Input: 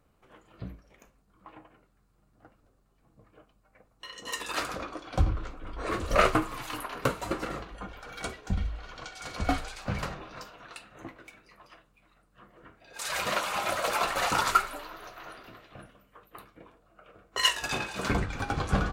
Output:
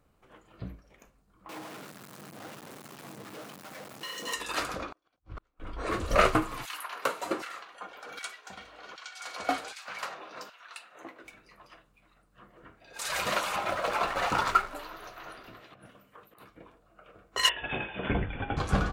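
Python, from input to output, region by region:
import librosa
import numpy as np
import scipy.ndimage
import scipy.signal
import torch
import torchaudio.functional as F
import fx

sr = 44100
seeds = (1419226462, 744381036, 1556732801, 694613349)

y = fx.chain(x, sr, fx.zero_step(step_db=-38.5),
    fx.highpass(hz=140.0, slope=24), at=(1.49, 4.33))
y = fx.chain(y, sr, fx.low_shelf(hz=330.0, db=-4.5),
    fx.over_compress(threshold_db=-39.0, ratio=-1.0),
    fx.gate_flip(shuts_db=-31.0, range_db=-40), at=(4.92, 5.6))
y = fx.chain(y, sr, fx.low_shelf(hz=330.0, db=4.5),
    fx.filter_lfo_highpass(shape='saw_down', hz=1.3, low_hz=270.0, high_hz=1800.0, q=0.83), at=(6.65, 11.24))
y = fx.chain(y, sr, fx.lowpass(hz=3200.0, slope=6),
    fx.backlash(play_db=-40.0), at=(13.56, 14.75))
y = fx.chain(y, sr, fx.highpass(hz=97.0, slope=12),
    fx.over_compress(threshold_db=-51.0, ratio=-0.5), at=(15.61, 16.49))
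y = fx.chain(y, sr, fx.cheby1_lowpass(hz=3500.0, order=10),
    fx.peak_eq(hz=1200.0, db=-8.5, octaves=0.47), at=(17.49, 18.57))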